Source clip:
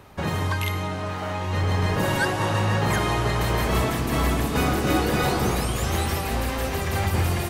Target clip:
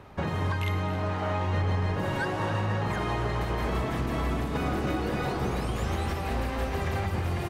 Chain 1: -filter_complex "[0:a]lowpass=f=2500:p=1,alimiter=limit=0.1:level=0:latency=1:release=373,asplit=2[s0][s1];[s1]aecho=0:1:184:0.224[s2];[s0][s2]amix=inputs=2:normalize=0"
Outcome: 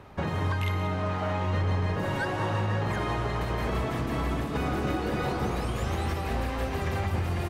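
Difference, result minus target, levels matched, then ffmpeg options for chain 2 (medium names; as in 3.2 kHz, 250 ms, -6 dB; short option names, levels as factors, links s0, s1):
echo 88 ms early
-filter_complex "[0:a]lowpass=f=2500:p=1,alimiter=limit=0.1:level=0:latency=1:release=373,asplit=2[s0][s1];[s1]aecho=0:1:272:0.224[s2];[s0][s2]amix=inputs=2:normalize=0"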